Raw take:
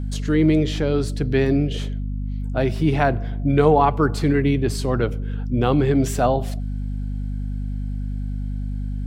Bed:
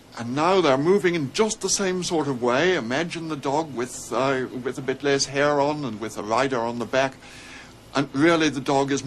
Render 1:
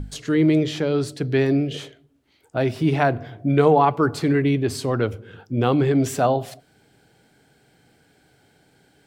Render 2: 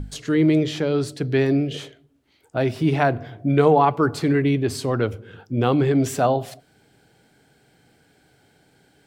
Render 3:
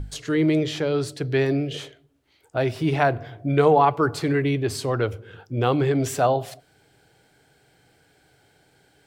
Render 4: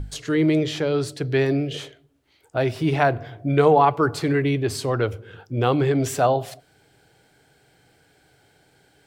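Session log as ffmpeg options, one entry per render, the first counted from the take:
-af "bandreject=f=50:t=h:w=6,bandreject=f=100:t=h:w=6,bandreject=f=150:t=h:w=6,bandreject=f=200:t=h:w=6,bandreject=f=250:t=h:w=6"
-af anull
-af "equalizer=f=220:w=1.9:g=-8.5"
-af "volume=1dB"

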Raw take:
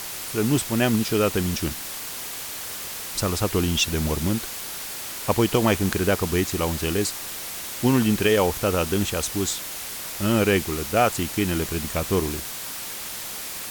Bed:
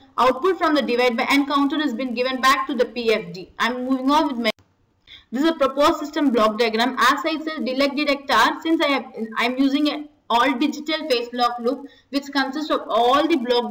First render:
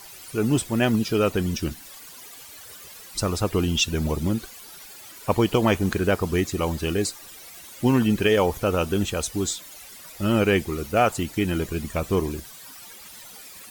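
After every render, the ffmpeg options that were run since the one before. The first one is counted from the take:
-af "afftdn=nr=14:nf=-34"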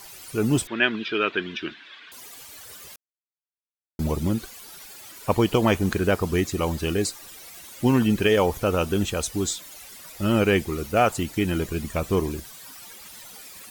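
-filter_complex "[0:a]asettb=1/sr,asplit=3[a][b][c];[a]atrim=end=0.674[d];[b]atrim=start=0.67:end=2.12,asetpts=PTS-STARTPTS,afade=t=in:d=0.004:c=qsin,afade=t=out:st=1.446:d=0.004:c=qsin,highpass=360,equalizer=f=360:t=q:w=4:g=3,equalizer=f=520:t=q:w=4:g=-9,equalizer=f=780:t=q:w=4:g=-8,equalizer=f=1.6k:t=q:w=4:g=9,equalizer=f=2.4k:t=q:w=4:g=6,equalizer=f=3.5k:t=q:w=4:g=9,lowpass=f=3.6k:w=0.5412,lowpass=f=3.6k:w=1.3066[e];[c]atrim=start=2.116[f];[d][e]acrossfade=d=0.004:c1=hsin:c2=qsin[g];[g][f]acrossfade=d=0.004:c1=qsin:c2=hsin,asplit=3[h][i][j];[h]atrim=end=2.96,asetpts=PTS-STARTPTS,afade=t=out:st=2.956:d=0.004:c=hsin[k];[i]atrim=start=2.96:end=3.99,asetpts=PTS-STARTPTS,volume=0[l];[j]atrim=start=3.99,asetpts=PTS-STARTPTS,afade=t=in:d=0.004:c=hsin[m];[k][l][m]concat=n=3:v=0:a=1"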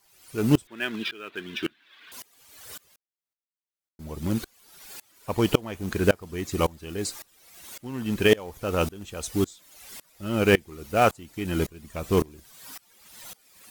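-filter_complex "[0:a]asplit=2[a][b];[b]acrusher=bits=2:mode=log:mix=0:aa=0.000001,volume=-5.5dB[c];[a][c]amix=inputs=2:normalize=0,aeval=exprs='val(0)*pow(10,-26*if(lt(mod(-1.8*n/s,1),2*abs(-1.8)/1000),1-mod(-1.8*n/s,1)/(2*abs(-1.8)/1000),(mod(-1.8*n/s,1)-2*abs(-1.8)/1000)/(1-2*abs(-1.8)/1000))/20)':c=same"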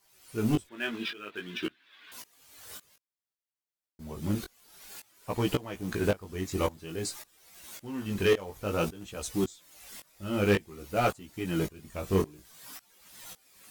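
-af "asoftclip=type=tanh:threshold=-14.5dB,flanger=delay=15.5:depth=5.7:speed=0.54"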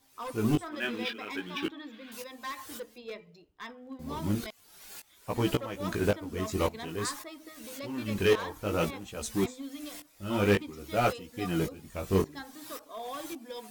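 -filter_complex "[1:a]volume=-22.5dB[a];[0:a][a]amix=inputs=2:normalize=0"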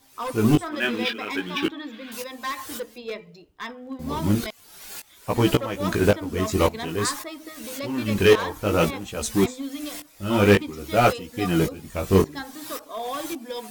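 -af "volume=8.5dB"

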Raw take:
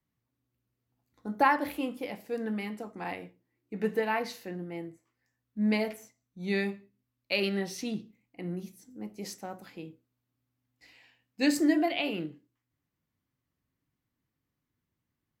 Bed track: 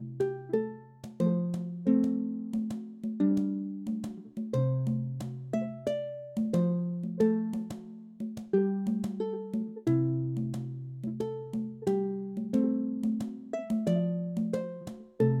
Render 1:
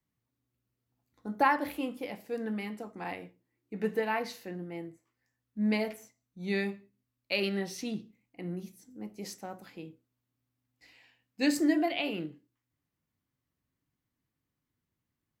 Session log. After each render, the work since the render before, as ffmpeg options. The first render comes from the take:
-af "volume=-1.5dB"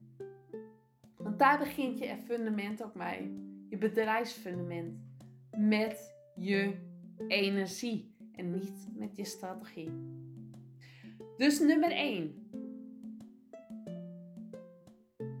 -filter_complex "[1:a]volume=-16.5dB[a];[0:a][a]amix=inputs=2:normalize=0"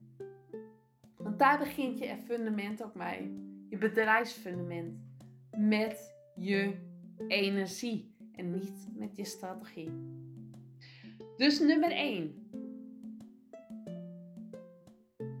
-filter_complex "[0:a]asettb=1/sr,asplit=3[a][b][c];[a]atrim=end=3.754[d];[b]atrim=start=3.75:end=4.23,asetpts=PTS-STARTPTS,afade=t=in:d=0.004:c=qsin,afade=t=out:st=0.476:d=0.004:c=qsin,equalizer=f=1.5k:t=o:w=0.92:g=10[e];[c]atrim=start=4.226[f];[d][e]acrossfade=d=0.004:c1=hsin:c2=qsin[g];[g][f]acrossfade=d=0.004:c1=qsin:c2=hsin,asettb=1/sr,asplit=3[h][i][j];[h]atrim=end=10.804[k];[i]atrim=start=10.8:end=11.78,asetpts=PTS-STARTPTS,afade=t=in:d=0.004:c=qsin,afade=t=out:st=0.976:d=0.004:c=qsin,highshelf=f=6.7k:t=q:w=3:g=-12.5[l];[j]atrim=start=11.776[m];[k][l]acrossfade=d=0.004:c1=hsin:c2=qsin[n];[n][m]acrossfade=d=0.004:c1=qsin:c2=hsin"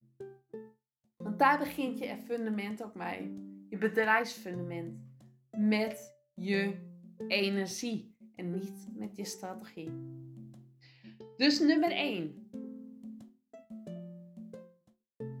-af "agate=range=-33dB:threshold=-48dB:ratio=3:detection=peak,adynamicequalizer=threshold=0.00224:dfrequency=6300:dqfactor=1.6:tfrequency=6300:tqfactor=1.6:attack=5:release=100:ratio=0.375:range=2:mode=boostabove:tftype=bell"

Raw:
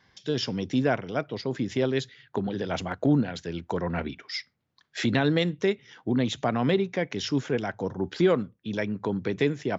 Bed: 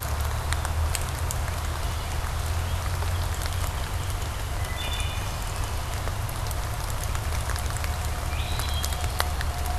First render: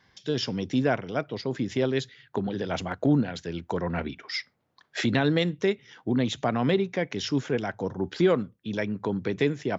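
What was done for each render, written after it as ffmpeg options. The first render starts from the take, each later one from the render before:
-filter_complex "[0:a]asettb=1/sr,asplit=3[a][b][c];[a]atrim=end=4.234[d];[b]atrim=start=4.23:end=5.01,asetpts=PTS-STARTPTS,afade=t=in:d=0.004:c=qsin,afade=t=out:st=0.776:d=0.004:c=qsin,equalizer=f=660:w=0.49:g=10[e];[c]atrim=start=5.006[f];[d][e]acrossfade=d=0.004:c1=hsin:c2=qsin[g];[g][f]acrossfade=d=0.004:c1=qsin:c2=hsin"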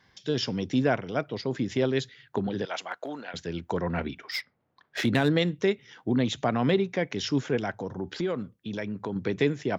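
-filter_complex "[0:a]asettb=1/sr,asplit=3[a][b][c];[a]atrim=end=2.654[d];[b]atrim=start=2.65:end=3.34,asetpts=PTS-STARTPTS,afade=t=in:d=0.004:c=qsin,afade=t=out:st=0.686:d=0.004:c=qsin,highpass=750[e];[c]atrim=start=3.336[f];[d][e]acrossfade=d=0.004:c1=hsin:c2=qsin[g];[g][f]acrossfade=d=0.004:c1=qsin:c2=hsin,asettb=1/sr,asplit=3[h][i][j];[h]atrim=end=4.314[k];[i]atrim=start=4.31:end=5.35,asetpts=PTS-STARTPTS,afade=t=in:d=0.004:c=qsin,afade=t=out:st=1.036:d=0.004:c=qsin,adynamicsmooth=sensitivity=6:basefreq=3.5k[l];[j]atrim=start=5.346[m];[k][l]acrossfade=d=0.004:c1=hsin:c2=qsin[n];[n][m]acrossfade=d=0.004:c1=qsin:c2=hsin,asettb=1/sr,asplit=3[o][p][q];[o]atrim=end=7.744[r];[p]atrim=start=7.74:end=9.16,asetpts=PTS-STARTPTS,afade=t=in:d=0.004:c=qsin,afade=t=out:st=1.416:d=0.004:c=qsin,acompressor=threshold=-31dB:ratio=2:attack=3.2:release=140:knee=1:detection=peak[s];[q]atrim=start=9.156[t];[r][s]acrossfade=d=0.004:c1=hsin:c2=qsin[u];[u][t]acrossfade=d=0.004:c1=qsin:c2=hsin"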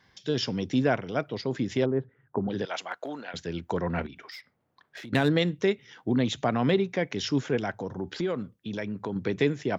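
-filter_complex "[0:a]asplit=3[a][b][c];[a]afade=t=out:st=1.84:d=0.02[d];[b]lowpass=f=1.2k:w=0.5412,lowpass=f=1.2k:w=1.3066,afade=t=in:st=1.84:d=0.02,afade=t=out:st=2.48:d=0.02[e];[c]afade=t=in:st=2.48:d=0.02[f];[d][e][f]amix=inputs=3:normalize=0,asettb=1/sr,asplit=3[g][h][i];[g]atrim=end=4.064[j];[h]atrim=start=4.06:end=5.13,asetpts=PTS-STARTPTS,afade=t=in:d=0.004:c=qsin,afade=t=out:st=1.066:d=0.004:c=qsin,acompressor=threshold=-40dB:ratio=6:attack=3.2:release=140:knee=1:detection=peak[k];[i]atrim=start=5.126[l];[j][k]acrossfade=d=0.004:c1=hsin:c2=qsin[m];[m][l]acrossfade=d=0.004:c1=qsin:c2=hsin"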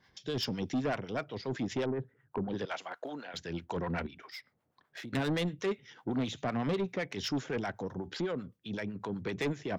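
-filter_complex "[0:a]acrossover=split=670[a][b];[a]aeval=exprs='val(0)*(1-0.7/2+0.7/2*cos(2*PI*7.9*n/s))':c=same[c];[b]aeval=exprs='val(0)*(1-0.7/2-0.7/2*cos(2*PI*7.9*n/s))':c=same[d];[c][d]amix=inputs=2:normalize=0,asoftclip=type=tanh:threshold=-26.5dB"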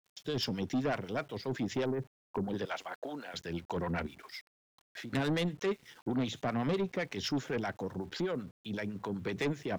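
-af "aeval=exprs='val(0)*gte(abs(val(0)),0.0015)':c=same"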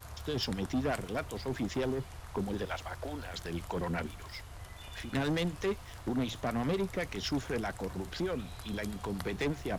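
-filter_complex "[1:a]volume=-18dB[a];[0:a][a]amix=inputs=2:normalize=0"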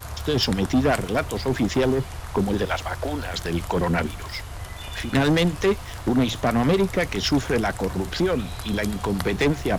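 -af "volume=12dB"

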